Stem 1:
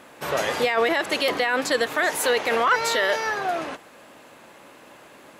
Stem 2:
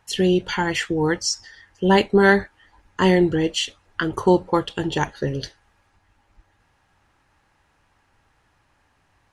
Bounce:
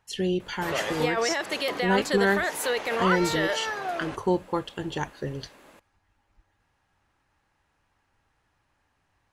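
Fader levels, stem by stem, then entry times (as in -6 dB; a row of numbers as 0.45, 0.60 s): -5.5, -8.0 dB; 0.40, 0.00 s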